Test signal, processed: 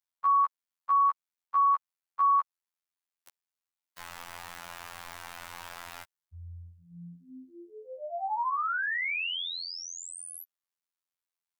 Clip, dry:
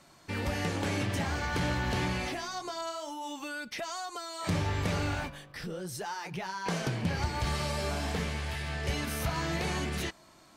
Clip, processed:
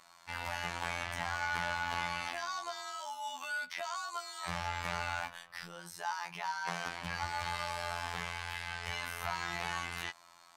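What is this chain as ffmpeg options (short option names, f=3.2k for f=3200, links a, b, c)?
-filter_complex "[0:a]lowshelf=f=590:t=q:w=1.5:g=-13.5,afftfilt=real='hypot(re,im)*cos(PI*b)':imag='0':win_size=2048:overlap=0.75,acrossover=split=3100[a][b];[b]acompressor=threshold=-41dB:ratio=4:attack=1:release=60[c];[a][c]amix=inputs=2:normalize=0,volume=2dB"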